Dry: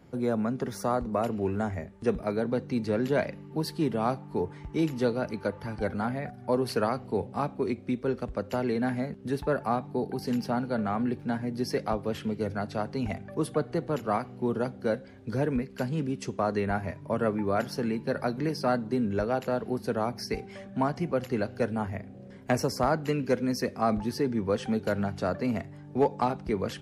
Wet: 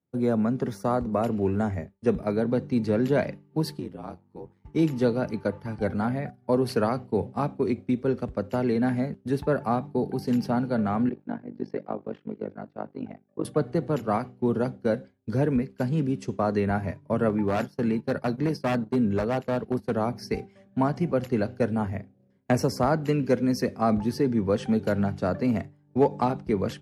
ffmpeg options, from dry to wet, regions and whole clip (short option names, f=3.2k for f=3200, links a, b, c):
-filter_complex "[0:a]asettb=1/sr,asplit=3[a][b][c];[a]atrim=end=3.794[d];[b]atrim=start=3.79:end=4.65,asetpts=PTS-STARTPTS,afade=t=in:d=0.004:c=qsin,afade=t=out:st=0.856:d=0.004:c=qsin,aeval=exprs='val(0)*sin(2*PI*46*n/s)':c=same,acompressor=threshold=-38dB:ratio=2:attack=3.2:release=140:knee=1:detection=peak[e];[c]atrim=start=4.646[f];[d][e]acrossfade=d=0.004:c1=hsin:c2=qsin[g];[g][f]acrossfade=d=0.004:c1=qsin:c2=hsin,asettb=1/sr,asplit=3[h][i][j];[h]atrim=end=11.094[k];[i]atrim=start=11.09:end=13.45,asetpts=PTS-STARTPTS,afade=t=in:d=0.004:c=qsin,afade=t=out:st=2.356:d=0.004:c=qsin,tremolo=f=49:d=0.919,highpass=210,lowpass=3.5k,highshelf=f=2.4k:g=-9.5[l];[j]atrim=start=13.446[m];[k][l]acrossfade=d=0.004:c1=hsin:c2=qsin[n];[n][m]acrossfade=d=0.004:c1=qsin:c2=hsin,asettb=1/sr,asplit=3[o][p][q];[o]atrim=end=17.294[r];[p]atrim=start=17.29:end=19.97,asetpts=PTS-STARTPTS,afade=t=in:d=0.004:c=qsin,afade=t=out:st=2.676:d=0.004:c=qsin,agate=range=-12dB:threshold=-36dB:ratio=16:release=100:detection=peak,aeval=exprs='0.0891*(abs(mod(val(0)/0.0891+3,4)-2)-1)':c=same[s];[q]atrim=start=19.966[t];[r][s]acrossfade=d=0.004:c1=hsin:c2=qsin[u];[u][t]acrossfade=d=0.004:c1=qsin:c2=hsin,agate=range=-33dB:threshold=-32dB:ratio=3:detection=peak,highpass=73,lowshelf=f=450:g=6"